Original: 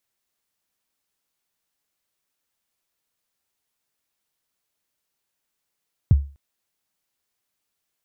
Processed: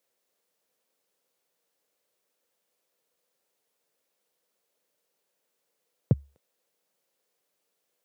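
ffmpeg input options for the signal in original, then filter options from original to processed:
-f lavfi -i "aevalsrc='0.447*pow(10,-3*t/0.34)*sin(2*PI*(150*0.025/log(70/150)*(exp(log(70/150)*min(t,0.025)/0.025)-1)+70*max(t-0.025,0)))':duration=0.25:sample_rate=44100"
-af "highpass=frequency=130:width=0.5412,highpass=frequency=130:width=1.3066,equalizer=frequency=500:width=1.9:gain=14"

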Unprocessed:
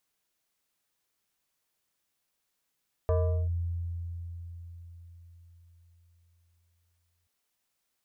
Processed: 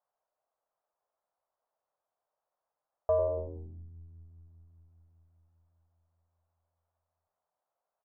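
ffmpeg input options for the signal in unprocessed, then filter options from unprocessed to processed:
-f lavfi -i "aevalsrc='0.0841*pow(10,-3*t/4.69)*sin(2*PI*85.5*t+0.99*clip(1-t/0.4,0,1)*sin(2*PI*6.36*85.5*t))':duration=4.18:sample_rate=44100"
-filter_complex "[0:a]lowpass=frequency=1200:width=0.5412,lowpass=frequency=1200:width=1.3066,lowshelf=frequency=430:width_type=q:width=3:gain=-13,asplit=2[link_01][link_02];[link_02]asplit=6[link_03][link_04][link_05][link_06][link_07][link_08];[link_03]adelay=93,afreqshift=-83,volume=-11.5dB[link_09];[link_04]adelay=186,afreqshift=-166,volume=-17dB[link_10];[link_05]adelay=279,afreqshift=-249,volume=-22.5dB[link_11];[link_06]adelay=372,afreqshift=-332,volume=-28dB[link_12];[link_07]adelay=465,afreqshift=-415,volume=-33.6dB[link_13];[link_08]adelay=558,afreqshift=-498,volume=-39.1dB[link_14];[link_09][link_10][link_11][link_12][link_13][link_14]amix=inputs=6:normalize=0[link_15];[link_01][link_15]amix=inputs=2:normalize=0"

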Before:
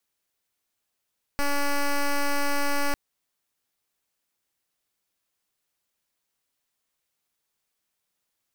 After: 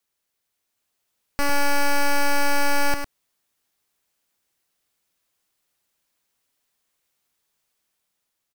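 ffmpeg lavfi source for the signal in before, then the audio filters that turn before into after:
-f lavfi -i "aevalsrc='0.0708*(2*lt(mod(285*t,1),0.08)-1)':duration=1.55:sample_rate=44100"
-af "dynaudnorm=framelen=330:gausssize=5:maxgain=4dB,aecho=1:1:104:0.422"

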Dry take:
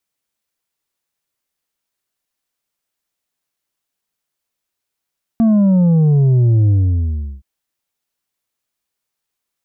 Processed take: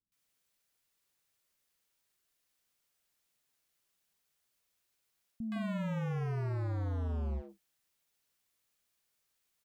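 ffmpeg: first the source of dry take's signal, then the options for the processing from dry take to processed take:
-f lavfi -i "aevalsrc='0.335*clip((2.02-t)/0.73,0,1)*tanh(1.78*sin(2*PI*230*2.02/log(65/230)*(exp(log(65/230)*t/2.02)-1)))/tanh(1.78)':duration=2.02:sample_rate=44100"
-filter_complex "[0:a]areverse,acompressor=threshold=-22dB:ratio=10,areverse,asoftclip=type=hard:threshold=-33.5dB,acrossover=split=280|870[link_01][link_02][link_03];[link_03]adelay=120[link_04];[link_02]adelay=160[link_05];[link_01][link_05][link_04]amix=inputs=3:normalize=0"

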